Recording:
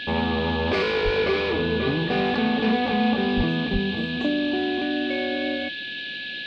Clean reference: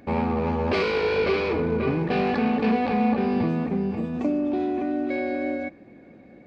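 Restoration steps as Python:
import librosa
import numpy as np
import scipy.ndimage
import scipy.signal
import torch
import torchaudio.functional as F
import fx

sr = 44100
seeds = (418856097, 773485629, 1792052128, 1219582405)

y = fx.notch(x, sr, hz=1700.0, q=30.0)
y = fx.fix_deplosive(y, sr, at_s=(1.04, 3.36, 3.72))
y = fx.noise_reduce(y, sr, print_start_s=5.75, print_end_s=6.25, reduce_db=15.0)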